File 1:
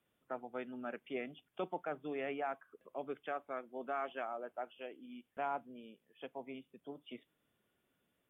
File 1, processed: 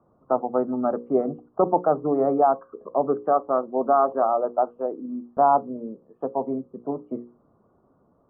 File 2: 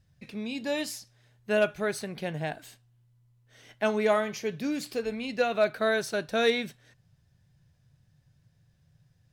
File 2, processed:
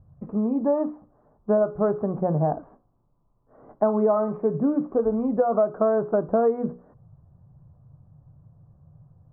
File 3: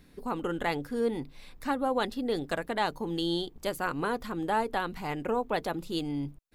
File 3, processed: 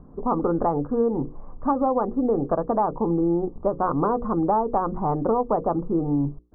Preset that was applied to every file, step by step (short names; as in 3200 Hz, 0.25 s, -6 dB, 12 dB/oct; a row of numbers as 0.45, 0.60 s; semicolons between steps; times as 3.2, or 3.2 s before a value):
Chebyshev low-pass 1200 Hz, order 5; notches 60/120/180/240/300/360/420/480/540 Hz; compressor 10:1, threshold -30 dBFS; match loudness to -24 LUFS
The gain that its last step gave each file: +21.0, +13.0, +12.5 dB